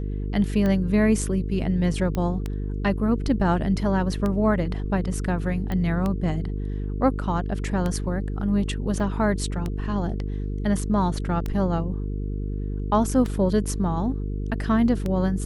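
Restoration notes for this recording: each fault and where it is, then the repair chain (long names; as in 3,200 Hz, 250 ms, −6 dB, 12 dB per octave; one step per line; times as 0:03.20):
mains buzz 50 Hz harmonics 9 −28 dBFS
scratch tick 33 1/3 rpm −15 dBFS
0:02.15: click −15 dBFS
0:05.72: click −17 dBFS
0:09.00: drop-out 4 ms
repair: click removal
hum removal 50 Hz, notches 9
repair the gap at 0:09.00, 4 ms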